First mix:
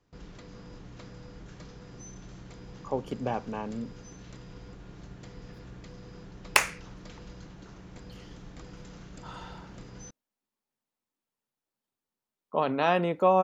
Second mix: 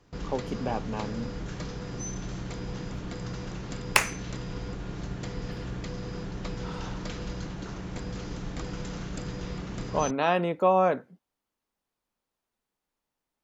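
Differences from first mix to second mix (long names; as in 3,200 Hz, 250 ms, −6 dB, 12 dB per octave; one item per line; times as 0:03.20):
speech: entry −2.60 s
background +10.5 dB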